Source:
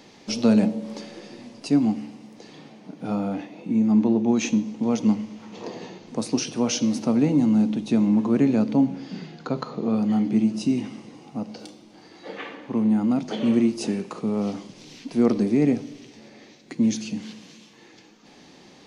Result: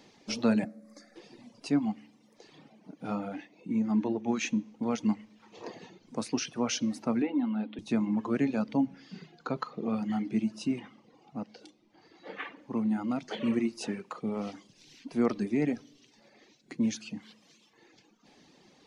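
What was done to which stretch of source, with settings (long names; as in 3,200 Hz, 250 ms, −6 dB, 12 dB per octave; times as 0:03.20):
0:00.64–0:01.16: phaser with its sweep stopped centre 610 Hz, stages 8
0:07.22–0:07.79: elliptic band-pass filter 230–3,600 Hz
0:10.79–0:12.57: high-frequency loss of the air 58 metres
whole clip: reverb reduction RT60 1.1 s; dynamic equaliser 1,600 Hz, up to +8 dB, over −46 dBFS, Q 0.75; level −7.5 dB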